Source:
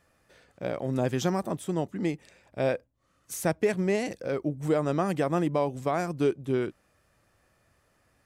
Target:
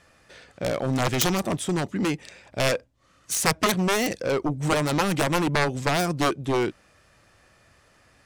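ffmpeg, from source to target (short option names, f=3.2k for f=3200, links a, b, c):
-af "adynamicsmooth=sensitivity=4.5:basefreq=4.3k,crystalizer=i=5:c=0,aeval=exprs='0.422*(cos(1*acos(clip(val(0)/0.422,-1,1)))-cos(1*PI/2))+0.15*(cos(7*acos(clip(val(0)/0.422,-1,1)))-cos(7*PI/2))':c=same,volume=4dB"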